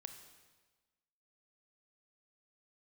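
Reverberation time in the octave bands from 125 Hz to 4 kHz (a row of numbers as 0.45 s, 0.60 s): 1.3 s, 1.3 s, 1.3 s, 1.3 s, 1.2 s, 1.2 s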